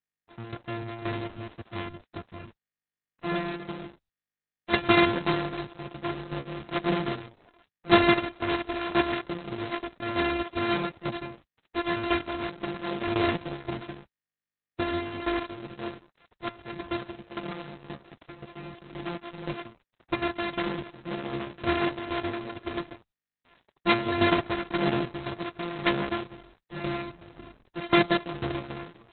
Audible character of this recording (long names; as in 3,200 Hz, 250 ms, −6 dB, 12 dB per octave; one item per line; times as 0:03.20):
a buzz of ramps at a fixed pitch in blocks of 128 samples
tremolo saw down 1.9 Hz, depth 70%
a quantiser's noise floor 10 bits, dither none
Opus